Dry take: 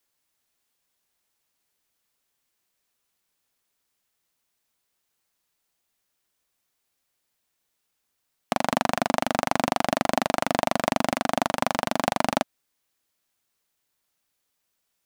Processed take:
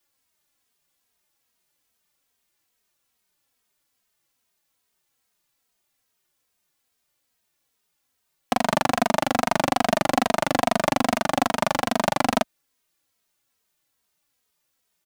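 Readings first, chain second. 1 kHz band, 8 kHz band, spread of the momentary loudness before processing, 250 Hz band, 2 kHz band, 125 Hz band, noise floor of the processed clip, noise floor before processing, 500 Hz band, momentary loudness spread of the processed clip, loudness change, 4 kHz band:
+2.5 dB, +2.5 dB, 2 LU, +2.5 dB, +2.5 dB, +2.5 dB, -75 dBFS, -77 dBFS, +2.5 dB, 2 LU, +2.5 dB, +2.5 dB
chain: endless flanger 2.9 ms -2.4 Hz; gain +5.5 dB

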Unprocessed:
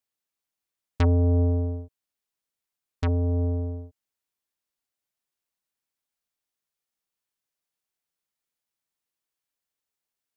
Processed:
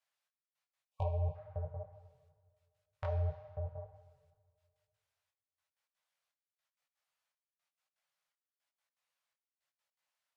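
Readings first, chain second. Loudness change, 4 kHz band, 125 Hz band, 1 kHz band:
-15.0 dB, -18.5 dB, -14.5 dB, -7.0 dB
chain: compressor, threshold -23 dBFS, peak gain reduction 5 dB; step gate "xxx...x.x.x" 164 bpm -60 dB; low shelf 280 Hz -9 dB; treble ducked by the level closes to 630 Hz, closed at -34 dBFS; plate-style reverb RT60 2 s, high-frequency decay 0.75×, DRR 12 dB; overdrive pedal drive 15 dB, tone 2000 Hz, clips at -17 dBFS; elliptic band-stop 160–530 Hz, stop band 40 dB; spectral delete 0.87–1.35, 1100–2300 Hz; bell 140 Hz +7 dB 2.4 oct; detuned doubles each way 35 cents; gain +1.5 dB

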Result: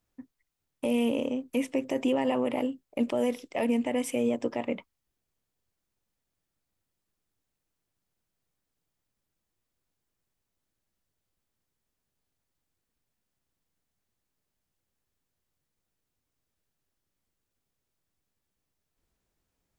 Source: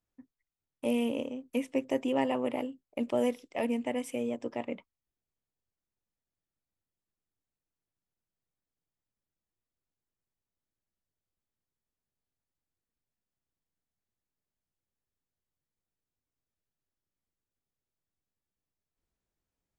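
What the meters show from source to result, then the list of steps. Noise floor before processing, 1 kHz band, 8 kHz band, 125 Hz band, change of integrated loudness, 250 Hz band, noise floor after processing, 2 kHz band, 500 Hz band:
under -85 dBFS, +2.0 dB, +6.0 dB, +3.5 dB, +3.5 dB, +4.0 dB, -84 dBFS, +3.0 dB, +3.0 dB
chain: limiter -25.5 dBFS, peak gain reduction 9.5 dB; gain +8 dB

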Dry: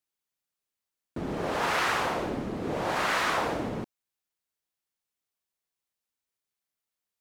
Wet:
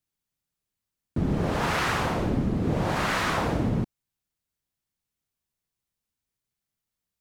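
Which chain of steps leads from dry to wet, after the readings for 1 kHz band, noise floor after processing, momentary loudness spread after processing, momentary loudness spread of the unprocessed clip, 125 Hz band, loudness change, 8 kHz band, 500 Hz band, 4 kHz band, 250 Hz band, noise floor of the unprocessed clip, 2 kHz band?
0.0 dB, under -85 dBFS, 5 LU, 12 LU, +12.5 dB, +2.5 dB, +1.0 dB, +1.5 dB, +0.5 dB, +7.0 dB, under -85 dBFS, 0.0 dB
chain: tone controls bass +14 dB, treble +1 dB

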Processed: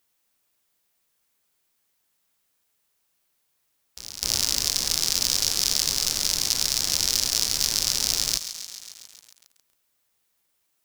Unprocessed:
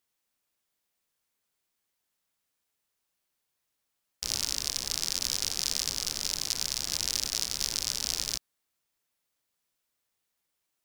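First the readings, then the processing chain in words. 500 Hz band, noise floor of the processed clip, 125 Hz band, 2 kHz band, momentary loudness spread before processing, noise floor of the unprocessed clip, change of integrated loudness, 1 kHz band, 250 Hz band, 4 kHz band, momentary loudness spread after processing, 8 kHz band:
+7.0 dB, -73 dBFS, +7.0 dB, +6.5 dB, 2 LU, -82 dBFS, +7.5 dB, +6.5 dB, +6.5 dB, +7.5 dB, 12 LU, +7.5 dB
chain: overloaded stage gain 11.5 dB; high shelf 11000 Hz +4.5 dB; on a send: reverse echo 0.254 s -14 dB; on the sum: lo-fi delay 0.136 s, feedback 80%, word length 7-bit, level -11.5 dB; gain +6.5 dB

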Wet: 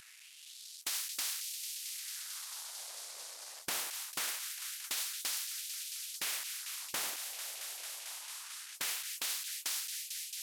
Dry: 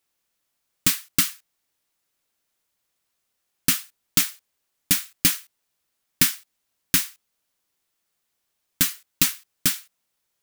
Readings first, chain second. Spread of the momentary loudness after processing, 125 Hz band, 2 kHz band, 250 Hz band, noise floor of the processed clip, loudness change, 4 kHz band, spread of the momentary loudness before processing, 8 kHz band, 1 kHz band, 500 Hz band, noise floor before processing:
8 LU, under -30 dB, -10.5 dB, -28.0 dB, -54 dBFS, -15.5 dB, -9.0 dB, 6 LU, -10.0 dB, -6.5 dB, -8.0 dB, -77 dBFS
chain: CVSD 64 kbps; low shelf 350 Hz -7 dB; AGC gain up to 7 dB; LFO high-pass sine 0.23 Hz 570–4900 Hz; limiter -17.5 dBFS, peak gain reduction 10.5 dB; thin delay 0.223 s, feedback 74%, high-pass 4600 Hz, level -17 dB; spectral compressor 4:1; gain -6 dB

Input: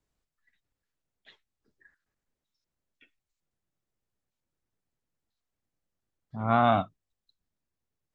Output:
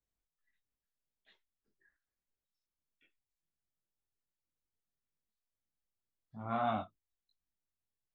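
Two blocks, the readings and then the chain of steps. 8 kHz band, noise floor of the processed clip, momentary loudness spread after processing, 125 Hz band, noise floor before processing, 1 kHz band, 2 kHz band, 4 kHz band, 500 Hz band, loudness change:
n/a, under -85 dBFS, 18 LU, -14.0 dB, under -85 dBFS, -11.0 dB, -12.0 dB, -11.5 dB, -11.0 dB, -10.5 dB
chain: chorus voices 4, 1.2 Hz, delay 21 ms, depth 3 ms; gain -8.5 dB

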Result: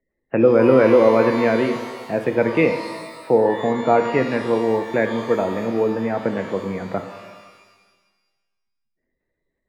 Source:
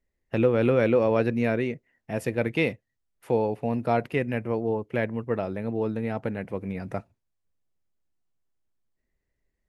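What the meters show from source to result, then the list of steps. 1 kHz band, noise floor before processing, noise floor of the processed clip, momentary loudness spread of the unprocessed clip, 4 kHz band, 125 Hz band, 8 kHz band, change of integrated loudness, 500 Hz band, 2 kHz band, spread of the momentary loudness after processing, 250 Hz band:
+9.5 dB, -80 dBFS, -77 dBFS, 12 LU, +7.5 dB, +1.0 dB, n/a, +8.0 dB, +8.5 dB, +7.0 dB, 14 LU, +7.0 dB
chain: spectral gate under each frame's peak -30 dB strong; three-band isolator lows -12 dB, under 180 Hz, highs -21 dB, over 2400 Hz; shimmer reverb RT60 1.4 s, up +12 st, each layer -8 dB, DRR 6 dB; gain +8 dB

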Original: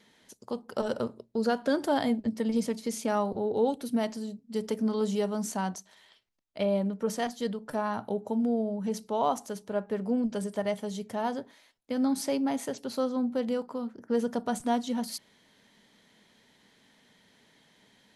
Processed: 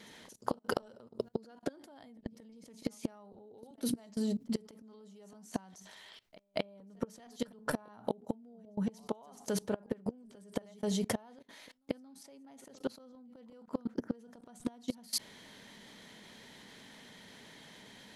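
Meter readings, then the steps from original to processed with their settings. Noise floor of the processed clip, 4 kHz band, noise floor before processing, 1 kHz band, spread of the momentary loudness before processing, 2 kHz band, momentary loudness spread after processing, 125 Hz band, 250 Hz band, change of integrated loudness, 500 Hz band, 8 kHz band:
-60 dBFS, -4.0 dB, -64 dBFS, -13.0 dB, 8 LU, -6.5 dB, 19 LU, -5.0 dB, -9.5 dB, -9.0 dB, -11.0 dB, -4.0 dB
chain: flipped gate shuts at -24 dBFS, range -26 dB; pre-echo 0.229 s -21 dB; level quantiser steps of 23 dB; gain +14.5 dB

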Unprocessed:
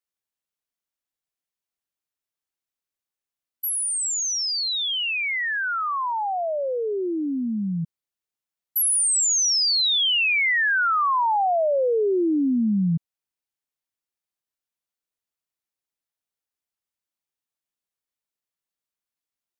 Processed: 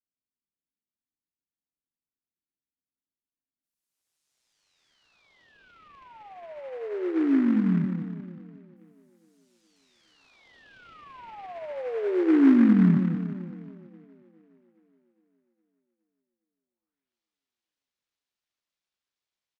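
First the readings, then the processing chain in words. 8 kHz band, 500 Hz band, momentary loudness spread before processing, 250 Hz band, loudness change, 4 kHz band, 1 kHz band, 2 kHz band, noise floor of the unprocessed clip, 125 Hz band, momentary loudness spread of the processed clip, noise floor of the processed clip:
under -40 dB, -7.5 dB, 9 LU, +3.5 dB, -2.0 dB, under -30 dB, -19.0 dB, -20.5 dB, under -85 dBFS, +2.0 dB, 23 LU, under -85 dBFS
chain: high shelf 5300 Hz +8 dB; de-hum 113 Hz, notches 3; low-pass sweep 270 Hz -> 4000 Hz, 16.5–17.16; doubler 22 ms -12 dB; split-band echo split 420 Hz, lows 0.179 s, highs 0.413 s, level -7 dB; noise-modulated delay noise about 1300 Hz, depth 0.047 ms; gain -3.5 dB

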